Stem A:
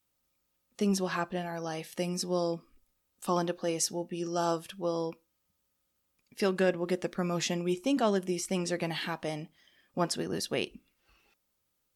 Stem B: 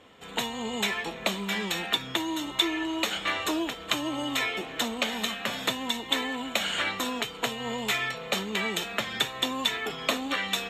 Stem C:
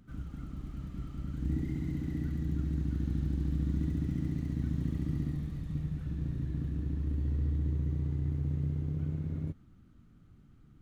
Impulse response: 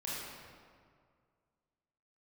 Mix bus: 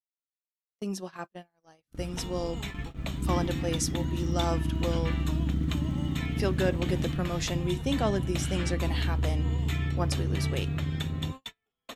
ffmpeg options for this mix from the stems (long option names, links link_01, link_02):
-filter_complex "[0:a]dynaudnorm=framelen=340:gausssize=13:maxgain=5dB,volume=-6dB[link_01];[1:a]adelay=1800,volume=-12dB[link_02];[2:a]adelay=1800,volume=3dB[link_03];[link_01][link_02][link_03]amix=inputs=3:normalize=0,agate=range=-41dB:threshold=-36dB:ratio=16:detection=peak"